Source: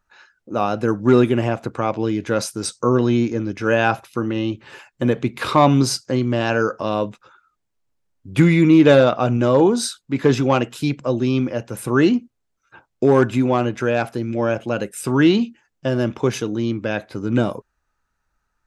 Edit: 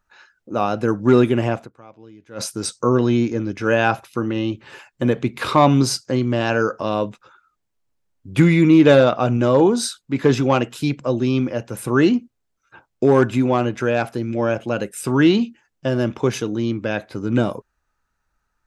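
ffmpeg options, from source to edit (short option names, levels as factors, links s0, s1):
-filter_complex "[0:a]asplit=3[s0][s1][s2];[s0]atrim=end=1.91,asetpts=PTS-STARTPTS,afade=t=out:st=1.62:d=0.29:c=exp:silence=0.0749894[s3];[s1]atrim=start=1.91:end=2.12,asetpts=PTS-STARTPTS,volume=0.075[s4];[s2]atrim=start=2.12,asetpts=PTS-STARTPTS,afade=t=in:d=0.29:c=exp:silence=0.0749894[s5];[s3][s4][s5]concat=n=3:v=0:a=1"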